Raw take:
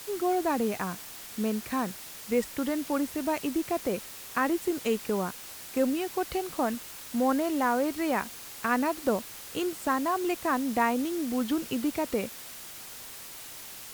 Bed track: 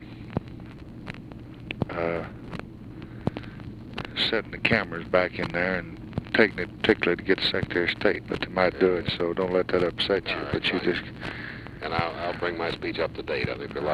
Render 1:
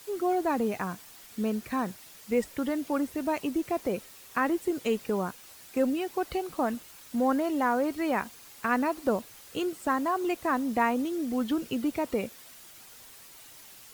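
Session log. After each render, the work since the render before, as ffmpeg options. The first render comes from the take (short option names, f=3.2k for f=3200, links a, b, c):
-af "afftdn=nr=8:nf=-44"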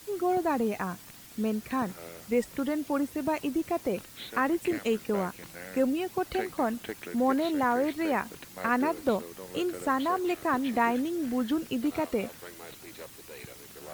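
-filter_complex "[1:a]volume=-18dB[a];[0:a][a]amix=inputs=2:normalize=0"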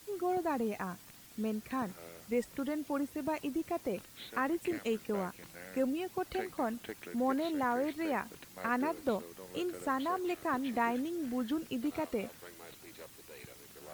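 -af "volume=-6dB"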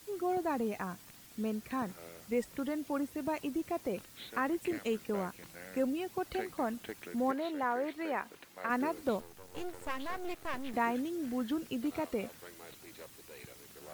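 -filter_complex "[0:a]asettb=1/sr,asplit=3[a][b][c];[a]atrim=end=7.314[d];[b]atrim=start=7.31:end=8.7,asetpts=PTS-STARTPTS,afade=t=in:d=0.004:c=qsin,afade=t=out:st=1.386:d=0.004:c=qsin,bass=f=250:g=-11,treble=f=4k:g=-6[e];[c]atrim=start=8.696[f];[d][e]acrossfade=d=0.004:c1=hsin:c2=qsin[g];[g][f]acrossfade=d=0.004:c1=qsin:c2=hsin,asettb=1/sr,asplit=3[h][i][j];[h]atrim=end=9.204[k];[i]atrim=start=9.2:end=10.74,asetpts=PTS-STARTPTS,afade=t=in:d=0.004:c=qsin,afade=t=out:st=1.536:d=0.004:c=qsin,aeval=exprs='max(val(0),0)':c=same[l];[j]atrim=start=10.736[m];[k][l]acrossfade=d=0.004:c1=hsin:c2=qsin[n];[n][m]acrossfade=d=0.004:c1=qsin:c2=hsin"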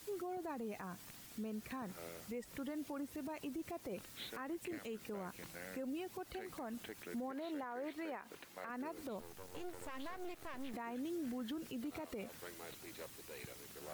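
-af "acompressor=threshold=-34dB:ratio=6,alimiter=level_in=12dB:limit=-24dB:level=0:latency=1:release=110,volume=-12dB"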